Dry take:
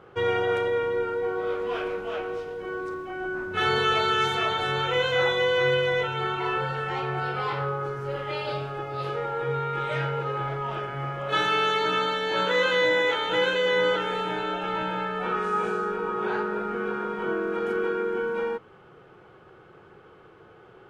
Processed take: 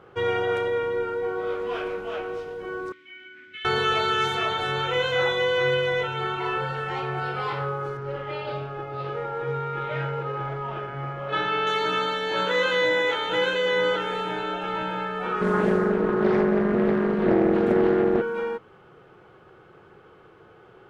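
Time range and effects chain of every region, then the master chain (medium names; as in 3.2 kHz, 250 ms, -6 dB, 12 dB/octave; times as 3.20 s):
2.92–3.65 s: FFT filter 110 Hz 0 dB, 260 Hz -11 dB, 1.8 kHz +13 dB + compression, threshold -22 dBFS + vowel filter i
7.97–11.67 s: companded quantiser 6-bit + distance through air 220 m
15.41–18.22 s: resonant low shelf 440 Hz +11.5 dB, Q 1.5 + loudspeaker Doppler distortion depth 0.52 ms
whole clip: none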